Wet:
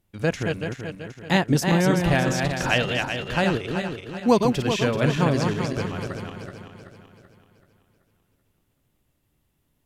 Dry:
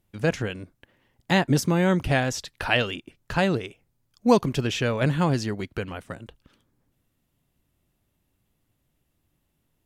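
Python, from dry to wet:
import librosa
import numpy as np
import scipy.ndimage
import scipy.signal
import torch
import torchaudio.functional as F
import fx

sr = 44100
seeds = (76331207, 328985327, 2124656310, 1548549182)

y = fx.reverse_delay_fb(x, sr, ms=191, feedback_pct=66, wet_db=-4.5)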